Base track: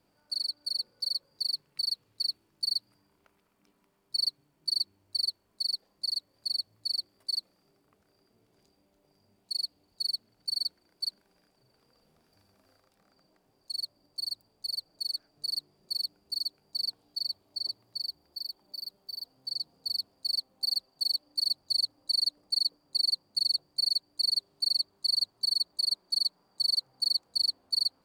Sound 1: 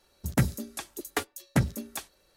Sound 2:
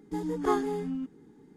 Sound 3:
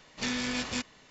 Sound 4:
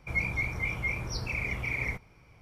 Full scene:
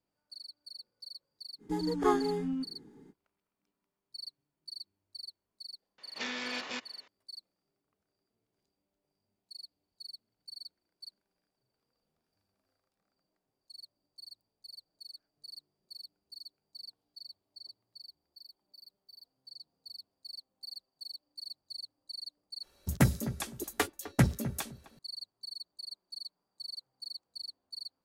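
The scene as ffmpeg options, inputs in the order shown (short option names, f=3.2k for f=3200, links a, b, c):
-filter_complex "[0:a]volume=-15.5dB[a];[3:a]highpass=370,lowpass=4.4k[b];[1:a]asplit=2[c][d];[d]adelay=256,lowpass=f=900:p=1,volume=-12dB,asplit=2[e][f];[f]adelay=256,lowpass=f=900:p=1,volume=0.21,asplit=2[g][h];[h]adelay=256,lowpass=f=900:p=1,volume=0.21[i];[c][e][g][i]amix=inputs=4:normalize=0[j];[a]asplit=2[k][l];[k]atrim=end=22.634[m];[j]atrim=end=2.36,asetpts=PTS-STARTPTS,volume=-0.5dB[n];[l]atrim=start=24.986[o];[2:a]atrim=end=1.56,asetpts=PTS-STARTPTS,volume=-0.5dB,afade=t=in:d=0.05,afade=t=out:st=1.51:d=0.05,adelay=1580[p];[b]atrim=end=1.1,asetpts=PTS-STARTPTS,volume=-2.5dB,afade=t=in:d=0.004:c=hsin,afade=t=out:st=1.096:d=0.004:c=hsin,adelay=5980[q];[m][n]acrossfade=d=0.004:c1=hsin:c2=hsin[r];[r][o]acrossfade=d=0.004:c1=hsin:c2=hsin[s];[s][p][q]amix=inputs=3:normalize=0"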